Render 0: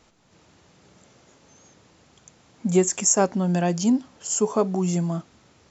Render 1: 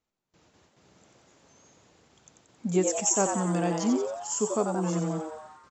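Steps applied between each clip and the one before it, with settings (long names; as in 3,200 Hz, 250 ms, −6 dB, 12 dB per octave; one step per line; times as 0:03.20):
noise gate with hold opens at −46 dBFS
on a send: echo with shifted repeats 90 ms, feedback 58%, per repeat +150 Hz, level −6 dB
on the sum: level −6 dB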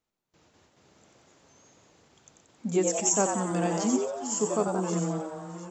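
delay that plays each chunk backwards 585 ms, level −12 dB
mains-hum notches 60/120/180/240 Hz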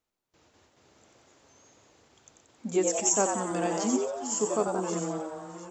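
parametric band 170 Hz −7.5 dB 0.53 octaves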